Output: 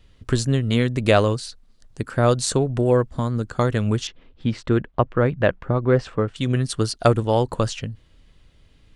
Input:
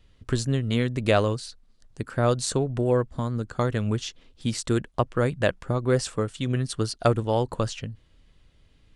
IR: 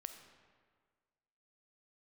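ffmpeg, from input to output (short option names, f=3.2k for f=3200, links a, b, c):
-filter_complex "[0:a]asettb=1/sr,asplit=3[a][b][c];[a]atrim=end=4.074[d];[b]atrim=start=4.07:end=6.36,asetpts=PTS-STARTPTS,afade=t=in:d=0.004:c=qsin,afade=t=out:st=2.286:d=0.004:c=qsin,lowpass=2.4k[e];[c]atrim=start=6.356[f];[d][e]acrossfade=d=0.004:c1=hsin:c2=qsin[g];[g][f]acrossfade=d=0.004:c1=qsin:c2=hsin,volume=4.5dB"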